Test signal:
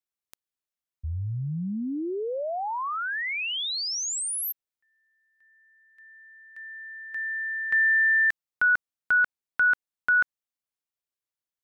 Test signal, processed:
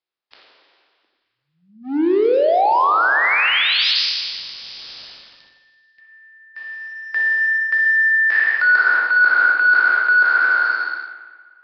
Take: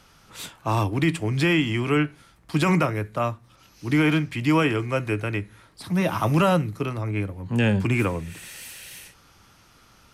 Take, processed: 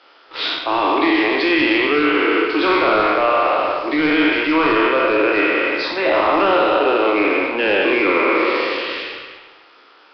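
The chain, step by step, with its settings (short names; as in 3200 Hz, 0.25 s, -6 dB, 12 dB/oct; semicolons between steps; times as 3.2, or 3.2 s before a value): spectral trails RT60 2.09 s; steep high-pass 300 Hz 48 dB/oct; sample leveller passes 2; reverse; compressor 12:1, threshold -21 dBFS; reverse; soft clip -16.5 dBFS; spring tank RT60 1.2 s, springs 57 ms, chirp 55 ms, DRR 5.5 dB; gain +8.5 dB; Nellymoser 22 kbps 11025 Hz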